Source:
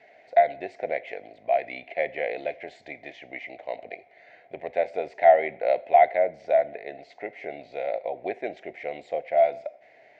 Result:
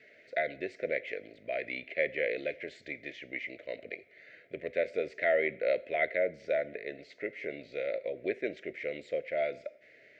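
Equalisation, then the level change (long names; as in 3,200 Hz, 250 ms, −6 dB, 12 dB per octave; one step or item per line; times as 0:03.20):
Butterworth band-reject 810 Hz, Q 1.2
notch filter 1,100 Hz, Q 5.4
0.0 dB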